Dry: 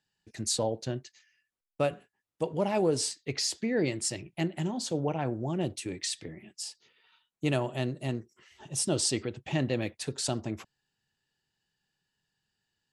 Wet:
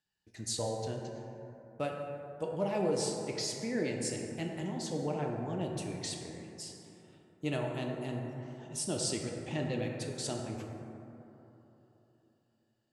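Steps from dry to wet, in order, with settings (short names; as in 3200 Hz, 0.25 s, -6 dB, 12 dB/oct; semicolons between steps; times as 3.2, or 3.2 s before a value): plate-style reverb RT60 3.4 s, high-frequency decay 0.3×, DRR 0.5 dB; gain -7 dB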